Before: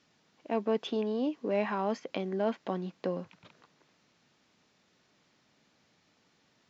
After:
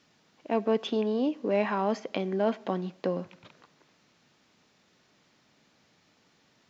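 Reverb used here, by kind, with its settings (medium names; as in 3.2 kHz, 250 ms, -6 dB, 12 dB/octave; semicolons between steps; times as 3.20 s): algorithmic reverb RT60 0.76 s, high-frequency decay 0.9×, pre-delay 0 ms, DRR 20 dB; trim +3.5 dB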